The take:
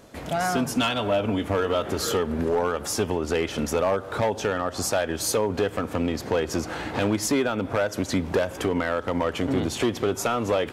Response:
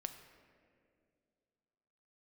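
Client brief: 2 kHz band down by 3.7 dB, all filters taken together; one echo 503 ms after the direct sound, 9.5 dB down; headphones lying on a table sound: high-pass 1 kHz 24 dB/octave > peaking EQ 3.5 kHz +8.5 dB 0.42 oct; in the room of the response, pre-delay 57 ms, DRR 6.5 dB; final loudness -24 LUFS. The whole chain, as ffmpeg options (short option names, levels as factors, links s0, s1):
-filter_complex "[0:a]equalizer=f=2000:t=o:g=-6,aecho=1:1:503:0.335,asplit=2[s0][s1];[1:a]atrim=start_sample=2205,adelay=57[s2];[s1][s2]afir=irnorm=-1:irlink=0,volume=0.631[s3];[s0][s3]amix=inputs=2:normalize=0,highpass=f=1000:w=0.5412,highpass=f=1000:w=1.3066,equalizer=f=3500:t=o:w=0.42:g=8.5,volume=2"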